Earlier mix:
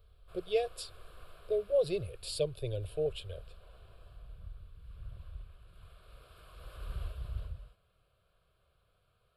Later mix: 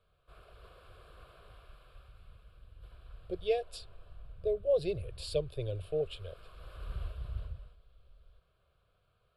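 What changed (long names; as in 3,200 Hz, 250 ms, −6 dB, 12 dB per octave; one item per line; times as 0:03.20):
speech: entry +2.95 s
master: add high-shelf EQ 7,200 Hz −10 dB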